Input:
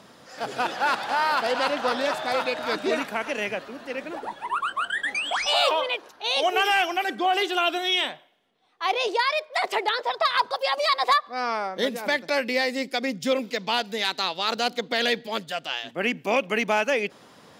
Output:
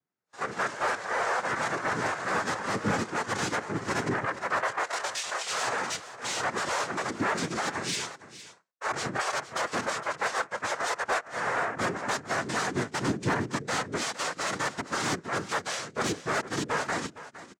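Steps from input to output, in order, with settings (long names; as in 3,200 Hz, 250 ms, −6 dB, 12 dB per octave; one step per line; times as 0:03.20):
noise gate with hold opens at −36 dBFS
in parallel at −3 dB: downward compressor, threshold −30 dBFS, peak gain reduction 13.5 dB
on the sum: cochlear-implant simulation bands 3
speech leveller 0.5 s
hard clipping −19 dBFS, distortion −12 dB
on a send: single-tap delay 462 ms −10 dB
on the sum: every bin expanded away from the loudest bin 1.5 to 1
level −1 dB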